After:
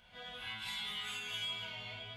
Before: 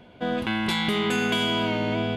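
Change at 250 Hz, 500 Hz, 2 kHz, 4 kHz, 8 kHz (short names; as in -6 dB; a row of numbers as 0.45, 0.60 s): -34.0, -28.0, -15.0, -10.5, -11.5 dB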